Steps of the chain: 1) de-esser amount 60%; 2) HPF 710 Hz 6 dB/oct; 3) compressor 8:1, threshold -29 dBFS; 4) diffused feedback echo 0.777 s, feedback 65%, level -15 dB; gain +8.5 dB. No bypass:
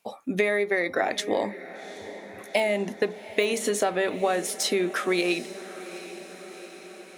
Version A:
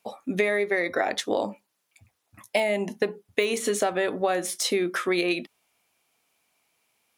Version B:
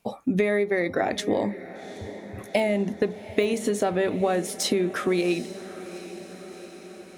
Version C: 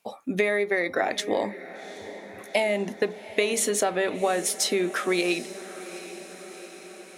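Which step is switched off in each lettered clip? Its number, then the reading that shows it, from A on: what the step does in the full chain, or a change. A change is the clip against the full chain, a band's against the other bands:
4, echo-to-direct -12.5 dB to none; 2, 125 Hz band +9.0 dB; 1, 8 kHz band +4.0 dB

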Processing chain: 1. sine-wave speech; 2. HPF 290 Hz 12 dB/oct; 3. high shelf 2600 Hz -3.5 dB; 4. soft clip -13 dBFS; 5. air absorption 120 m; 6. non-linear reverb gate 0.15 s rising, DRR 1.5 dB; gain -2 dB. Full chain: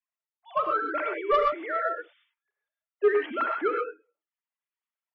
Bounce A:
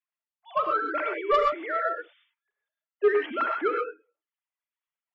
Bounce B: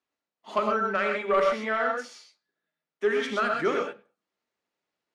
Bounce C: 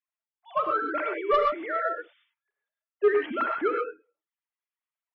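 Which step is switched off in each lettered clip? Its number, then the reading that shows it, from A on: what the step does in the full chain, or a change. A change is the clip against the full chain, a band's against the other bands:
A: 5, 4 kHz band +2.0 dB; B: 1, 1 kHz band -4.5 dB; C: 2, 250 Hz band +2.0 dB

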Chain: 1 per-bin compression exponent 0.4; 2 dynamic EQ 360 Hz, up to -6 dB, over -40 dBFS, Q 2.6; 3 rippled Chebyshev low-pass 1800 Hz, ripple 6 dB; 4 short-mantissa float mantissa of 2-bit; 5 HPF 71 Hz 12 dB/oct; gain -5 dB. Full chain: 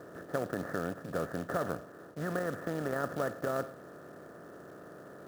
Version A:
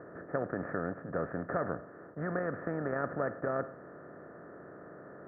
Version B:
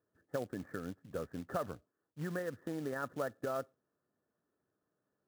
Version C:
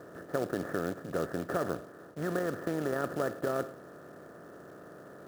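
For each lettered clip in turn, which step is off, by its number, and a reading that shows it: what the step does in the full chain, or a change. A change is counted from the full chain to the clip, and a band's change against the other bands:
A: 4, distortion -20 dB; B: 1, momentary loudness spread change -10 LU; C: 2, 2 kHz band -2.0 dB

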